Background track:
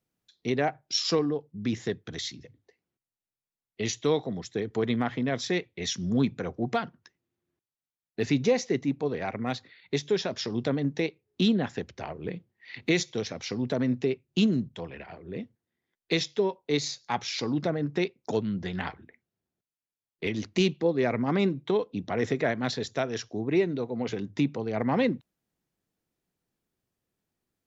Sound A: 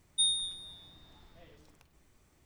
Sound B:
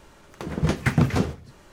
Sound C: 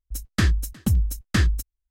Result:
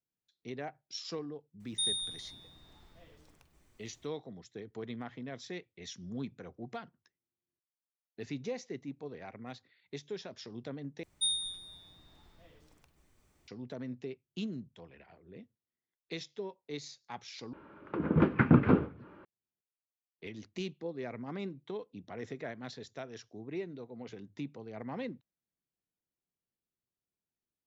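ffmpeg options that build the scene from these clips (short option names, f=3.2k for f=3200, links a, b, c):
-filter_complex "[1:a]asplit=2[a][b];[0:a]volume=-14.5dB[c];[a]alimiter=limit=-23dB:level=0:latency=1:release=71[d];[2:a]highpass=130,equalizer=f=140:t=q:w=4:g=-3,equalizer=f=300:t=q:w=4:g=6,equalizer=f=720:t=q:w=4:g=-7,equalizer=f=1.4k:t=q:w=4:g=3,equalizer=f=1.9k:t=q:w=4:g=-8,lowpass=f=2.2k:w=0.5412,lowpass=f=2.2k:w=1.3066[e];[c]asplit=3[f][g][h];[f]atrim=end=11.034[i];[b]atrim=end=2.45,asetpts=PTS-STARTPTS,volume=-3dB[j];[g]atrim=start=13.476:end=17.534[k];[e]atrim=end=1.72,asetpts=PTS-STARTPTS,volume=-1dB[l];[h]atrim=start=19.246[m];[d]atrim=end=2.45,asetpts=PTS-STARTPTS,volume=-1.5dB,afade=t=in:d=0.004:c=hsin,afade=t=out:st=2.446:d=0.004:c=hsin,adelay=1600[n];[i][j]acrossfade=d=0.004:c1=hsin:c2=hsin[o];[o][k]acrossfade=d=0.004:c1=hsin:c2=hsin[p];[p][l]acrossfade=d=0.004:c1=hsin:c2=hsin[q];[q][m]acrossfade=d=0.004:c1=hsin:c2=hsin[r];[r][n]amix=inputs=2:normalize=0"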